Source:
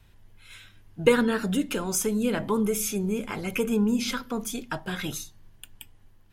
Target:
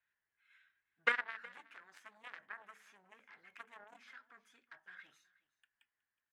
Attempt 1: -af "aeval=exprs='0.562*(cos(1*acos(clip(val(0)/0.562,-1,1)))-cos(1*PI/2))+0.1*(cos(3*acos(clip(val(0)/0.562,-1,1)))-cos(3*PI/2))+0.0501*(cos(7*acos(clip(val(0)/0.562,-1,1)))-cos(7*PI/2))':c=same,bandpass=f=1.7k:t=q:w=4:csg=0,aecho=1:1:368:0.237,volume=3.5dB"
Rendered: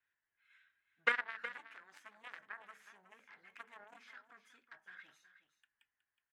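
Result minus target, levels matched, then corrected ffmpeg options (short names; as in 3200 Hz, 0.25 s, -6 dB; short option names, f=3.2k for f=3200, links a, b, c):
echo-to-direct +9 dB
-af "aeval=exprs='0.562*(cos(1*acos(clip(val(0)/0.562,-1,1)))-cos(1*PI/2))+0.1*(cos(3*acos(clip(val(0)/0.562,-1,1)))-cos(3*PI/2))+0.0501*(cos(7*acos(clip(val(0)/0.562,-1,1)))-cos(7*PI/2))':c=same,bandpass=f=1.7k:t=q:w=4:csg=0,aecho=1:1:368:0.0841,volume=3.5dB"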